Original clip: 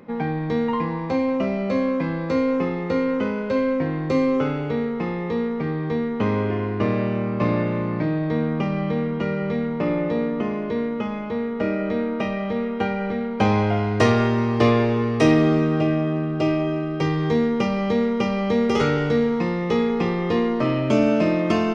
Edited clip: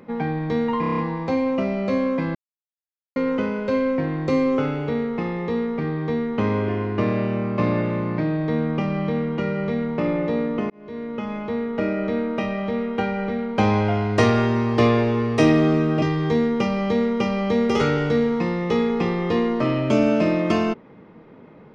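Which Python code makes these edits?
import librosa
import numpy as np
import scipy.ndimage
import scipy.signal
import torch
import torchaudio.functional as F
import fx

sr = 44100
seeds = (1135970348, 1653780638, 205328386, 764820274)

y = fx.edit(x, sr, fx.stutter(start_s=0.8, slice_s=0.03, count=7),
    fx.silence(start_s=2.17, length_s=0.81),
    fx.fade_in_span(start_s=10.52, length_s=0.67),
    fx.cut(start_s=15.84, length_s=1.18), tone=tone)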